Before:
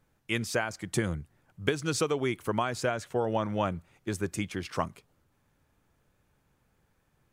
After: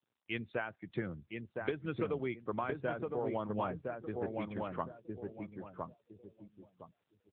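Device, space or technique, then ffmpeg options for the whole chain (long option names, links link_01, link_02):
mobile call with aggressive noise cancelling: -filter_complex "[0:a]asplit=3[link_01][link_02][link_03];[link_01]afade=type=out:start_time=2.84:duration=0.02[link_04];[link_02]lowshelf=frequency=100:gain=-2,afade=type=in:start_time=2.84:duration=0.02,afade=type=out:start_time=3.41:duration=0.02[link_05];[link_03]afade=type=in:start_time=3.41:duration=0.02[link_06];[link_04][link_05][link_06]amix=inputs=3:normalize=0,highpass=frequency=110:poles=1,asplit=2[link_07][link_08];[link_08]adelay=1012,lowpass=frequency=1800:poles=1,volume=-3dB,asplit=2[link_09][link_10];[link_10]adelay=1012,lowpass=frequency=1800:poles=1,volume=0.32,asplit=2[link_11][link_12];[link_12]adelay=1012,lowpass=frequency=1800:poles=1,volume=0.32,asplit=2[link_13][link_14];[link_14]adelay=1012,lowpass=frequency=1800:poles=1,volume=0.32[link_15];[link_07][link_09][link_11][link_13][link_15]amix=inputs=5:normalize=0,afftdn=noise_reduction=20:noise_floor=-42,volume=-7dB" -ar 8000 -c:a libopencore_amrnb -b:a 7950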